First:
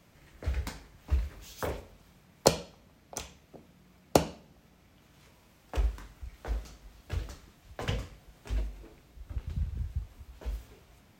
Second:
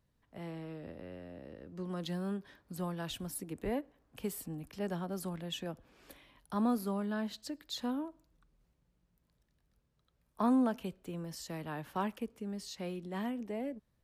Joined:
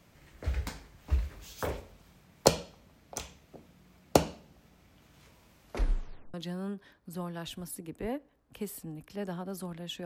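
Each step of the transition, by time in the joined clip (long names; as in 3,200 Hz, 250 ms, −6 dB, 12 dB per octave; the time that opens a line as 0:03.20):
first
0:05.62: tape stop 0.72 s
0:06.34: continue with second from 0:01.97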